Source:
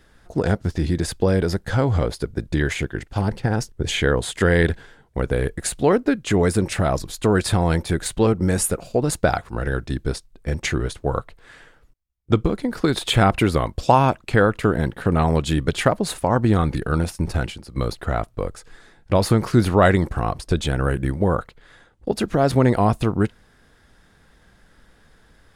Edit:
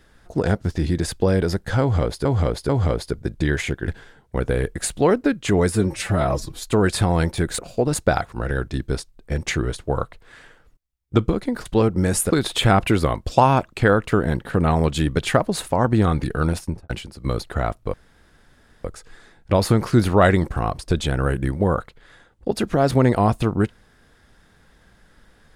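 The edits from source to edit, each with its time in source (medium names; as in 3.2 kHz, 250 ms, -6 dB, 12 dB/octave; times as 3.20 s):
1.81–2.25 s: loop, 3 plays
3.00–4.70 s: delete
6.52–7.13 s: stretch 1.5×
8.10–8.75 s: move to 12.82 s
17.11–17.41 s: studio fade out
18.45 s: insert room tone 0.91 s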